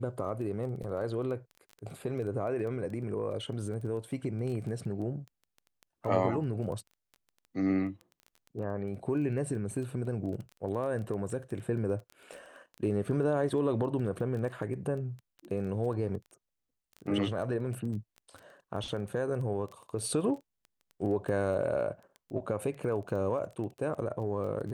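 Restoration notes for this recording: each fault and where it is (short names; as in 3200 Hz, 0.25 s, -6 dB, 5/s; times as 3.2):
crackle 12/s -38 dBFS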